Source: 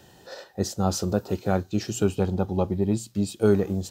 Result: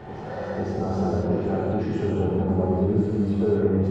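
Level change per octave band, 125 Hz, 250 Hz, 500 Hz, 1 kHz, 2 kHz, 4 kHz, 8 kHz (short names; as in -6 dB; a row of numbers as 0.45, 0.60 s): +2.5 dB, +2.0 dB, +2.0 dB, +1.5 dB, -0.5 dB, under -10 dB, under -20 dB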